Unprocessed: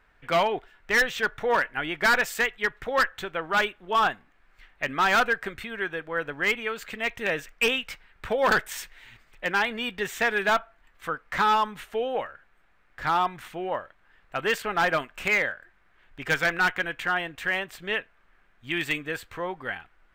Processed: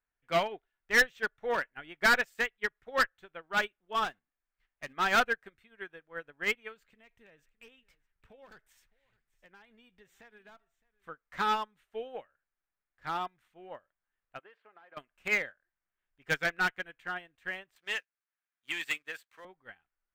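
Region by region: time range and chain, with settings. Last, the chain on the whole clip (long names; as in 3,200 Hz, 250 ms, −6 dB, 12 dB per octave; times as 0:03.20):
0:04.04–0:04.93: mu-law and A-law mismatch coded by mu + noise gate −46 dBFS, range −9 dB + hard clipping −21.5 dBFS
0:06.76–0:11.08: low-shelf EQ 260 Hz +7.5 dB + downward compressor 4 to 1, threshold −33 dBFS + single-tap delay 613 ms −17 dB
0:14.39–0:14.97: high-pass filter 400 Hz + high-frequency loss of the air 420 metres + downward compressor 16 to 1, threshold −29 dBFS
0:17.76–0:19.45: high-pass filter 1,500 Hz 6 dB per octave + leveller curve on the samples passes 2 + multiband upward and downward compressor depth 40%
whole clip: dynamic equaliser 980 Hz, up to −4 dB, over −37 dBFS, Q 2.4; expander for the loud parts 2.5 to 1, over −38 dBFS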